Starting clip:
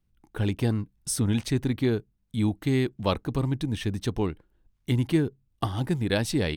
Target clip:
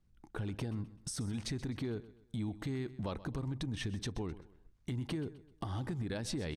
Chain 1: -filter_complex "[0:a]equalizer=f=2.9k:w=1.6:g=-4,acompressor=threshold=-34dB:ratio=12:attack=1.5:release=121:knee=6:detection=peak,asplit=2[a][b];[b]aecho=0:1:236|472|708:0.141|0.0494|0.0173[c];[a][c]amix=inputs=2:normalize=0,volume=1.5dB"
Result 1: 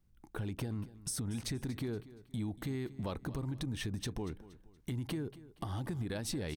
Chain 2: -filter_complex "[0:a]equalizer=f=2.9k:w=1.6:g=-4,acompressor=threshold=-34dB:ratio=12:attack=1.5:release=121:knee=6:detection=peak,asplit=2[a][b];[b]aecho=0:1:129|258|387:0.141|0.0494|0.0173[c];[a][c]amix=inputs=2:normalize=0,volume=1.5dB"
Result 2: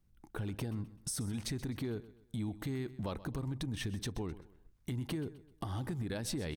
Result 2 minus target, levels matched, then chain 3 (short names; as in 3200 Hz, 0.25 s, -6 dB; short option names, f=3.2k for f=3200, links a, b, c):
8000 Hz band +3.0 dB
-filter_complex "[0:a]equalizer=f=2.9k:w=1.6:g=-4,acompressor=threshold=-34dB:ratio=12:attack=1.5:release=121:knee=6:detection=peak,lowpass=7.9k,asplit=2[a][b];[b]aecho=0:1:129|258|387:0.141|0.0494|0.0173[c];[a][c]amix=inputs=2:normalize=0,volume=1.5dB"